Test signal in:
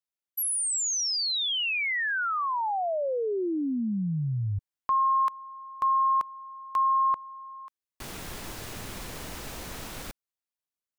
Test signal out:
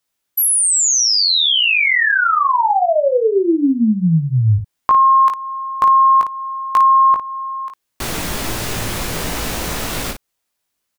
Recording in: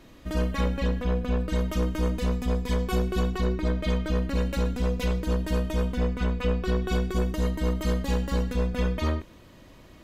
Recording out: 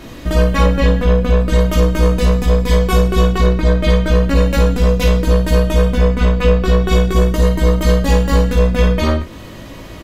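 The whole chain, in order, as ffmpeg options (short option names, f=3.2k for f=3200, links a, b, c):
-filter_complex "[0:a]asplit=2[a][b];[b]acompressor=threshold=-40dB:ratio=6:attack=36:release=311:detection=peak,volume=2dB[c];[a][c]amix=inputs=2:normalize=0,aecho=1:1:18|55:0.631|0.422,volume=9dB"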